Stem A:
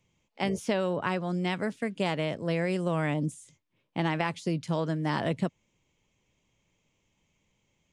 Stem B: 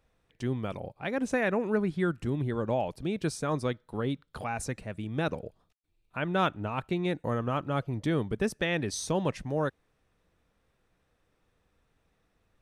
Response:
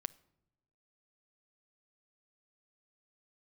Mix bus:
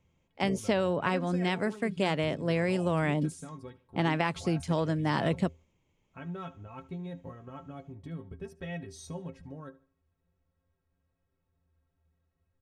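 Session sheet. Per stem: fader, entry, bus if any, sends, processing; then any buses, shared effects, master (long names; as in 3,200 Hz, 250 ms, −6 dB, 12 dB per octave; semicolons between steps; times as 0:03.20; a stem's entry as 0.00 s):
+0.5 dB, 0.00 s, no send, no echo send, no processing
−1.5 dB, 0.00 s, no send, echo send −19 dB, parametric band 86 Hz +9.5 dB 1.7 octaves; downward compressor 5 to 1, threshold −27 dBFS, peak gain reduction 7 dB; stiff-string resonator 80 Hz, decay 0.28 s, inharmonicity 0.03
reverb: not used
echo: repeating echo 74 ms, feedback 34%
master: one half of a high-frequency compander decoder only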